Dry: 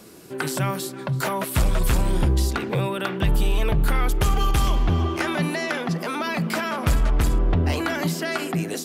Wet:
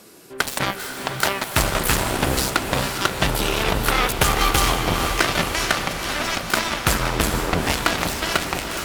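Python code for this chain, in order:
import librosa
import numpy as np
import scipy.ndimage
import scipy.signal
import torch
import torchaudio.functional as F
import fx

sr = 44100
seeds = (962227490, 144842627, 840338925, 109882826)

p1 = fx.low_shelf(x, sr, hz=320.0, db=-8.5)
p2 = fx.cheby_harmonics(p1, sr, harmonics=(5, 7), levels_db=(-17, -10), full_scale_db=-11.5)
p3 = p2 + fx.echo_diffused(p2, sr, ms=466, feedback_pct=63, wet_db=-7.0, dry=0)
y = F.gain(torch.from_numpy(p3), 7.5).numpy()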